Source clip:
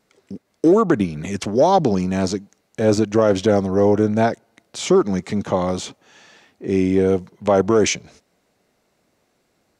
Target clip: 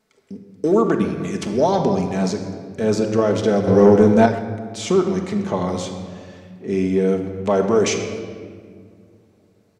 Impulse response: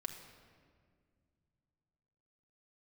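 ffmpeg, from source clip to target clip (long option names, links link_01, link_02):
-filter_complex "[1:a]atrim=start_sample=2205[link_01];[0:a][link_01]afir=irnorm=-1:irlink=0,asettb=1/sr,asplit=3[link_02][link_03][link_04];[link_02]atrim=end=3.674[link_05];[link_03]atrim=start=3.67:end=4.26,asetpts=PTS-STARTPTS,afade=type=in:duration=0.004:curve=qsin,afade=type=out:start_time=0.586:duration=0.004:curve=qsin,acontrast=57[link_06];[link_04]atrim=start=4.256[link_07];[link_05][link_06]acrossfade=duration=0.004:curve1=hsin:curve2=qsin[link_08];[link_08][link_07]acrossfade=duration=0.004:curve1=qsin:curve2=hsin,asplit=2[link_09][link_10];[link_10]adelay=130,highpass=300,lowpass=3400,asoftclip=type=hard:threshold=-12.5dB,volume=-15dB[link_11];[link_09][link_11]amix=inputs=2:normalize=0"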